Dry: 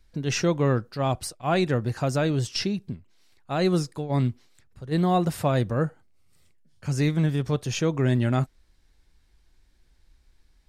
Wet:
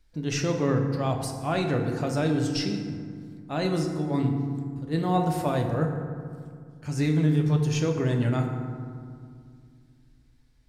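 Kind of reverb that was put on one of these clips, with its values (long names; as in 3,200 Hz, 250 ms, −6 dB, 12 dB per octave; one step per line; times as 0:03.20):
feedback delay network reverb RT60 2.1 s, low-frequency decay 1.45×, high-frequency decay 0.45×, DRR 2.5 dB
level −4 dB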